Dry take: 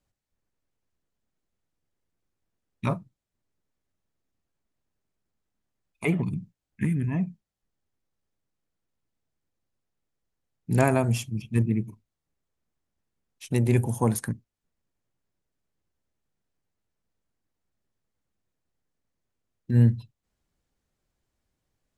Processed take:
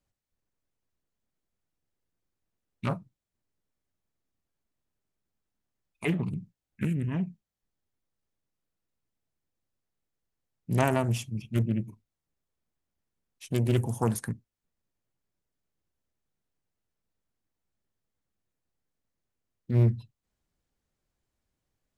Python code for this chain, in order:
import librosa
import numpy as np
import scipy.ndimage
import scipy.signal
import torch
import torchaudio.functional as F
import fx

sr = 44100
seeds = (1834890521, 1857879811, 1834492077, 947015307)

y = fx.doppler_dist(x, sr, depth_ms=0.61)
y = F.gain(torch.from_numpy(y), -3.0).numpy()